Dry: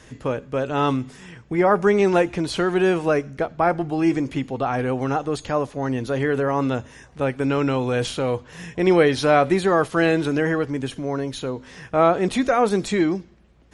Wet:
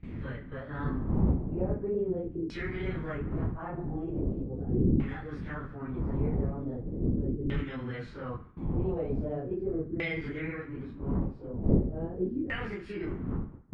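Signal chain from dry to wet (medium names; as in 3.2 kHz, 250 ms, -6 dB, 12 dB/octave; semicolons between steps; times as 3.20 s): phase randomisation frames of 100 ms; wind noise 260 Hz -21 dBFS; gate with hold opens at -22 dBFS; amplifier tone stack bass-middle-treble 6-0-2; in parallel at -0.5 dB: compression, threshold -39 dBFS, peak gain reduction 18.5 dB; on the sum: formant shift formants +4 st; LFO low-pass saw down 0.4 Hz 330–2400 Hz; band-passed feedback delay 71 ms, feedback 56%, band-pass 1.7 kHz, level -12.5 dB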